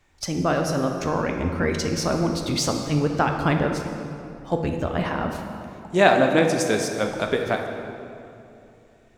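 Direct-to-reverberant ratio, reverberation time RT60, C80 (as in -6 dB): 3.0 dB, 2.8 s, 6.0 dB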